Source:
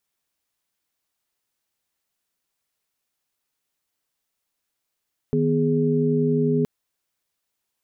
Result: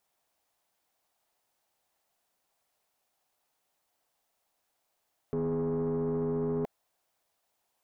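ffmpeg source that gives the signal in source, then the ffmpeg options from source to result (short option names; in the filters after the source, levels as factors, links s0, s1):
-f lavfi -i "aevalsrc='0.0794*(sin(2*PI*155.56*t)+sin(2*PI*246.94*t)+sin(2*PI*415.3*t))':d=1.32:s=44100"
-af "equalizer=f=730:w=1.3:g=12,alimiter=limit=0.0841:level=0:latency=1:release=20,asoftclip=type=tanh:threshold=0.0501"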